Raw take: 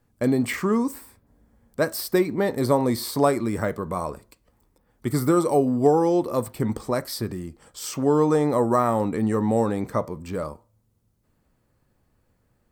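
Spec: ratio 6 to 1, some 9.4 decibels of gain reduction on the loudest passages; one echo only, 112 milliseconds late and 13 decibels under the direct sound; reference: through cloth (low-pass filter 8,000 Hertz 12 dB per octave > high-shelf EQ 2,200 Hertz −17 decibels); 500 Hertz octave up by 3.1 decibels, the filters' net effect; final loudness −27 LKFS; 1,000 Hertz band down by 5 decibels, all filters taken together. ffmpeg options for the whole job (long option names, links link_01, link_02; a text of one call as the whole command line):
ffmpeg -i in.wav -af "equalizer=frequency=500:width_type=o:gain=6,equalizer=frequency=1000:width_type=o:gain=-6,acompressor=threshold=-19dB:ratio=6,lowpass=8000,highshelf=frequency=2200:gain=-17,aecho=1:1:112:0.224,volume=-1dB" out.wav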